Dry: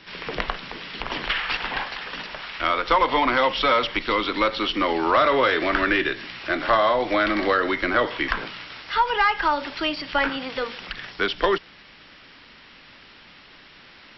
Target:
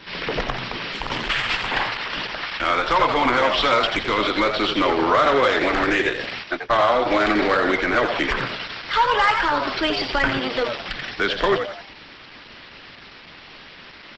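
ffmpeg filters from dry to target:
-filter_complex "[0:a]asplit=3[a][b][c];[a]afade=t=out:st=6.43:d=0.02[d];[b]agate=range=-46dB:threshold=-21dB:ratio=16:detection=peak,afade=t=in:st=6.43:d=0.02,afade=t=out:st=7.05:d=0.02[e];[c]afade=t=in:st=7.05:d=0.02[f];[d][e][f]amix=inputs=3:normalize=0,asettb=1/sr,asplit=3[g][h][i];[g]atrim=end=9.614[j];[h]atrim=start=9.61:end=10.39,asetpts=PTS-STARTPTS,afade=t=in:d=0.004:c=qsin,afade=t=out:st=0.776:d=0.004:c=qsin,asubboost=boost=5.5:cutoff=170[k];[i]atrim=start=10.386[l];[j][k]acrossfade=d=0.004:c1=hsin:c2=qsin[m];[m][l]acrossfade=d=0.004:c1=qsin:c2=hsin,asplit=2[n][o];[o]alimiter=limit=-17dB:level=0:latency=1:release=126,volume=1.5dB[p];[n][p]amix=inputs=2:normalize=0,asoftclip=type=tanh:threshold=-10dB,asettb=1/sr,asplit=3[q][r][s];[q]atrim=end=0.924[t];[r]atrim=start=0.92:end=1.68,asetpts=PTS-STARTPTS,afade=t=in:d=0.004:c=qsin,afade=t=out:st=0.756:d=0.004:c=qsin,aeval=exprs='0.282*(cos(1*acos(clip(val(0)/0.282,-1,1)))-cos(1*PI/2))+0.0224*(cos(3*acos(clip(val(0)/0.282,-1,1)))-cos(3*PI/2))+0.0112*(cos(6*acos(clip(val(0)/0.282,-1,1)))-cos(6*PI/2))':c=same[u];[s]atrim=start=1.676[v];[t][u]acrossfade=d=0.004:c1=hsin:c2=qsin[w];[w][v]acrossfade=d=0.004:c1=qsin:c2=hsin,asplit=2[x][y];[y]asplit=5[z][aa][ab][ac][ad];[z]adelay=86,afreqshift=100,volume=-7dB[ae];[aa]adelay=172,afreqshift=200,volume=-15dB[af];[ab]adelay=258,afreqshift=300,volume=-22.9dB[ag];[ac]adelay=344,afreqshift=400,volume=-30.9dB[ah];[ad]adelay=430,afreqshift=500,volume=-38.8dB[ai];[ae][af][ag][ah][ai]amix=inputs=5:normalize=0[aj];[x][aj]amix=inputs=2:normalize=0,aresample=32000,aresample=44100" -ar 48000 -c:a libopus -b:a 12k

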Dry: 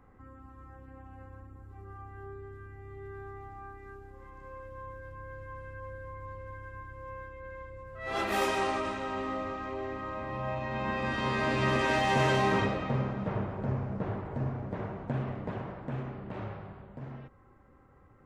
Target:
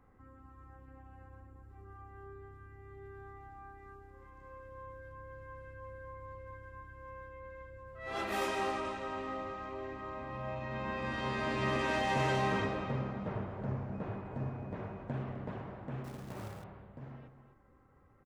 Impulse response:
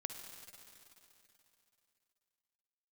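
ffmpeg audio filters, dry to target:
-filter_complex "[0:a]asettb=1/sr,asplit=3[a][b][c];[a]atrim=end=13.944[d];[b]atrim=start=13.94:end=15.03,asetpts=PTS-STARTPTS,afade=t=in:d=0.004:c=qsin,afade=t=out:st=1.086:d=0.004:c=qsin,aeval=exprs='val(0)+0.001*sin(2*PI*2500*n/s)':c=same[e];[c]atrim=start=15.026[f];[d][e]acrossfade=d=0.004:c1=hsin:c2=qsin[g];[g][f]acrossfade=d=0.004:c1=qsin:c2=hsin,asplit=2[h][i];[i]adelay=256.6,volume=-11dB,highshelf=f=4k:g=-5.77[j];[h][j]amix=inputs=2:normalize=0,asettb=1/sr,asplit=3[k][l][m];[k]atrim=end=16.044[n];[l]atrim=start=16.04:end=16.64,asetpts=PTS-STARTPTS,afade=t=in:d=0.004:c=qsin,afade=t=out:st=0.596:d=0.004:c=qsin,acrusher=bits=3:mode=log:mix=0:aa=0.000001[o];[m]atrim=start=16.636[p];[n][o]acrossfade=d=0.004:c1=hsin:c2=qsin[q];[q][p]acrossfade=d=0.004:c1=qsin:c2=hsin,volume=-5.5dB"

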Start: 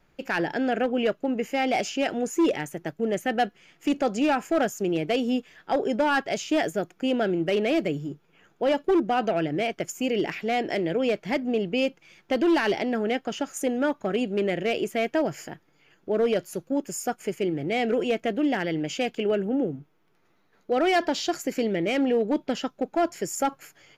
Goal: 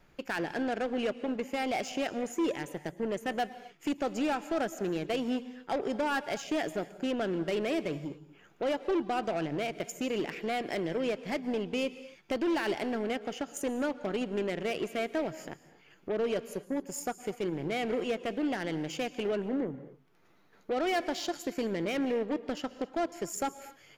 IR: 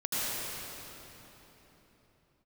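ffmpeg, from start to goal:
-filter_complex "[0:a]acompressor=threshold=-59dB:ratio=1.5,aeval=exprs='0.0422*(cos(1*acos(clip(val(0)/0.0422,-1,1)))-cos(1*PI/2))+0.00473*(cos(5*acos(clip(val(0)/0.0422,-1,1)))-cos(5*PI/2))+0.00531*(cos(7*acos(clip(val(0)/0.0422,-1,1)))-cos(7*PI/2))':c=same,asplit=2[a][b];[1:a]atrim=start_sample=2205,afade=t=out:st=0.24:d=0.01,atrim=end_sample=11025,asetrate=30429,aresample=44100[c];[b][c]afir=irnorm=-1:irlink=0,volume=-21.5dB[d];[a][d]amix=inputs=2:normalize=0,volume=4.5dB"

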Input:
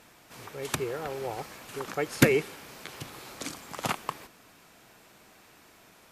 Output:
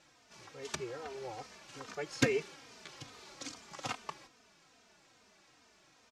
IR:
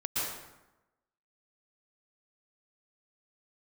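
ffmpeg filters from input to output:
-filter_complex "[0:a]lowpass=f=6k:t=q:w=1.8,lowshelf=f=200:g=-3,asplit=2[a][b];[b]adelay=3.1,afreqshift=-2.4[c];[a][c]amix=inputs=2:normalize=1,volume=-6dB"

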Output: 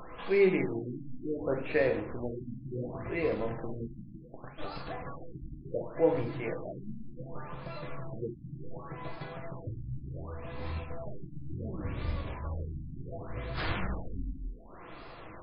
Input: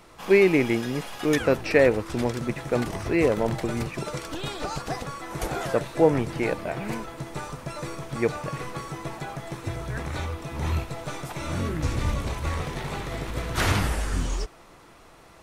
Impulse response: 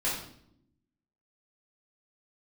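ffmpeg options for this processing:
-filter_complex "[0:a]asplit=3[a][b][c];[a]afade=t=out:st=3.93:d=0.02[d];[b]acrusher=bits=3:mix=0:aa=0.5,afade=t=in:st=3.93:d=0.02,afade=t=out:st=4.57:d=0.02[e];[c]afade=t=in:st=4.57:d=0.02[f];[d][e][f]amix=inputs=3:normalize=0,acompressor=mode=upward:threshold=-25dB:ratio=2.5,flanger=delay=3.8:depth=9.3:regen=63:speed=0.28:shape=sinusoidal,asplit=2[g][h];[1:a]atrim=start_sample=2205[i];[h][i]afir=irnorm=-1:irlink=0,volume=-9dB[j];[g][j]amix=inputs=2:normalize=0,afftfilt=real='re*lt(b*sr/1024,300*pow(5200/300,0.5+0.5*sin(2*PI*0.68*pts/sr)))':imag='im*lt(b*sr/1024,300*pow(5200/300,0.5+0.5*sin(2*PI*0.68*pts/sr)))':win_size=1024:overlap=0.75,volume=-8.5dB"

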